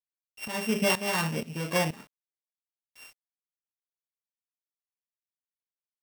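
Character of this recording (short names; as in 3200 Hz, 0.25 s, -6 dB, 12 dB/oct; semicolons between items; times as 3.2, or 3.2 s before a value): a buzz of ramps at a fixed pitch in blocks of 16 samples; tremolo saw up 2.1 Hz, depth 85%; a quantiser's noise floor 10-bit, dither none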